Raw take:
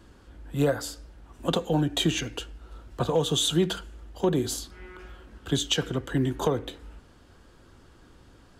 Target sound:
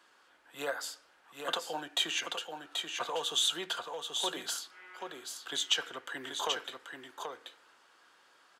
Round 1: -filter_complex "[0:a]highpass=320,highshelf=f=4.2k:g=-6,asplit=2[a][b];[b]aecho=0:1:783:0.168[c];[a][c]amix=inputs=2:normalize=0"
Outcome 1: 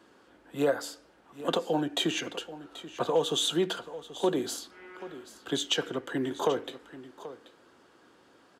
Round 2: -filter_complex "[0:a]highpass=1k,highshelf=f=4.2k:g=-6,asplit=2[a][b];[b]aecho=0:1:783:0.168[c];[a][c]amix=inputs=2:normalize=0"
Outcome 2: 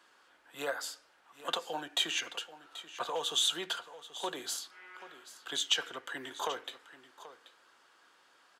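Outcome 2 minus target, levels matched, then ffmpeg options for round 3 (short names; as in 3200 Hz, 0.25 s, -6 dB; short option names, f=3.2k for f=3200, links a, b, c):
echo-to-direct -10 dB
-filter_complex "[0:a]highpass=1k,highshelf=f=4.2k:g=-6,asplit=2[a][b];[b]aecho=0:1:783:0.531[c];[a][c]amix=inputs=2:normalize=0"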